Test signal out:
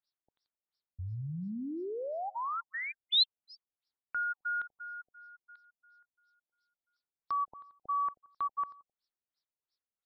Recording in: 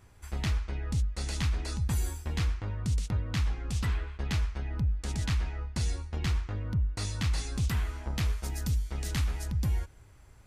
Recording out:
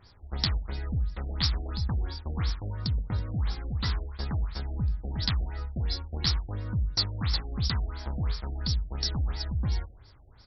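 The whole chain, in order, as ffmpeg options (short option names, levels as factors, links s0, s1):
-filter_complex "[0:a]equalizer=f=1200:t=o:w=1.4:g=3,aexciter=amount=9.2:drive=8.3:freq=4100,asplit=2[s0][s1];[s1]adelay=87,lowpass=f=4200:p=1,volume=0.119,asplit=2[s2][s3];[s3]adelay=87,lowpass=f=4200:p=1,volume=0.4,asplit=2[s4][s5];[s5]adelay=87,lowpass=f=4200:p=1,volume=0.4[s6];[s0][s2][s4][s6]amix=inputs=4:normalize=0,afftfilt=real='re*lt(b*sr/1024,740*pow(5800/740,0.5+0.5*sin(2*PI*2.9*pts/sr)))':imag='im*lt(b*sr/1024,740*pow(5800/740,0.5+0.5*sin(2*PI*2.9*pts/sr)))':win_size=1024:overlap=0.75"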